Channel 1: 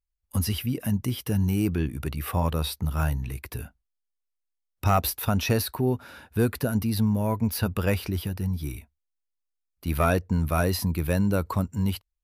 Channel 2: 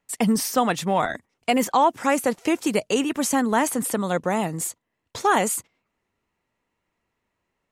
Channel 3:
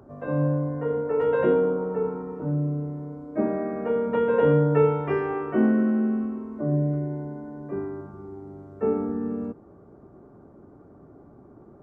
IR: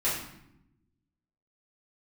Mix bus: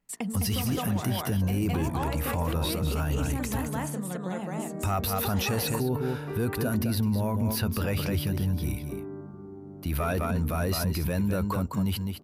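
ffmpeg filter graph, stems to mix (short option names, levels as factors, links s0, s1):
-filter_complex "[0:a]volume=1.26,asplit=2[s0][s1];[s1]volume=0.355[s2];[1:a]bandreject=f=55.04:t=h:w=4,bandreject=f=110.08:t=h:w=4,bandreject=f=165.12:t=h:w=4,bandreject=f=220.16:t=h:w=4,bandreject=f=275.2:t=h:w=4,bandreject=f=330.24:t=h:w=4,bandreject=f=385.28:t=h:w=4,bandreject=f=440.32:t=h:w=4,bandreject=f=495.36:t=h:w=4,bandreject=f=550.4:t=h:w=4,bandreject=f=605.44:t=h:w=4,bandreject=f=660.48:t=h:w=4,bandreject=f=715.52:t=h:w=4,bandreject=f=770.56:t=h:w=4,bandreject=f=825.6:t=h:w=4,bandreject=f=880.64:t=h:w=4,bandreject=f=935.68:t=h:w=4,bandreject=f=990.72:t=h:w=4,bandreject=f=1045.76:t=h:w=4,bandreject=f=1100.8:t=h:w=4,bandreject=f=1155.84:t=h:w=4,bandreject=f=1210.88:t=h:w=4,bandreject=f=1265.92:t=h:w=4,bandreject=f=1320.96:t=h:w=4,bandreject=f=1376:t=h:w=4,bandreject=f=1431.04:t=h:w=4,bandreject=f=1486.08:t=h:w=4,bandreject=f=1541.12:t=h:w=4,bandreject=f=1596.16:t=h:w=4,bandreject=f=1651.2:t=h:w=4,bandreject=f=1706.24:t=h:w=4,bandreject=f=1761.28:t=h:w=4,bandreject=f=1816.32:t=h:w=4,bandreject=f=1871.36:t=h:w=4,volume=0.501,asplit=2[s3][s4];[s4]volume=0.422[s5];[2:a]adelay=1200,volume=0.422[s6];[s3][s6]amix=inputs=2:normalize=0,equalizer=f=180:t=o:w=1.4:g=9.5,acompressor=threshold=0.0251:ratio=6,volume=1[s7];[s2][s5]amix=inputs=2:normalize=0,aecho=0:1:208:1[s8];[s0][s7][s8]amix=inputs=3:normalize=0,alimiter=limit=0.106:level=0:latency=1:release=17"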